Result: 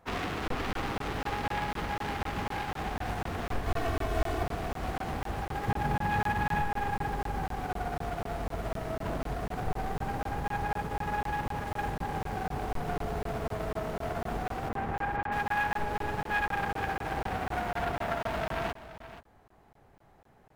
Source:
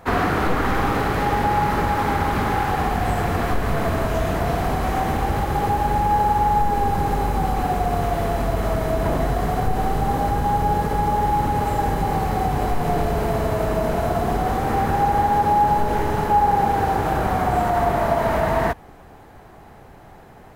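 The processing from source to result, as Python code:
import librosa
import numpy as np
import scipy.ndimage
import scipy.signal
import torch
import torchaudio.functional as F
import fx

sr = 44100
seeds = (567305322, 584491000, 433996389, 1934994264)

y = fx.self_delay(x, sr, depth_ms=0.4)
y = fx.comb(y, sr, ms=2.7, depth=0.8, at=(3.67, 4.43))
y = fx.peak_eq(y, sr, hz=150.0, db=8.5, octaves=1.7, at=(5.68, 6.62))
y = fx.lowpass(y, sr, hz=2100.0, slope=12, at=(14.68, 15.31), fade=0.02)
y = y + 10.0 ** (-9.5 / 20.0) * np.pad(y, (int(477 * sr / 1000.0), 0))[:len(y)]
y = fx.buffer_crackle(y, sr, first_s=0.48, period_s=0.25, block=1024, kind='zero')
y = fx.upward_expand(y, sr, threshold_db=-29.0, expansion=1.5)
y = y * librosa.db_to_amplitude(-9.0)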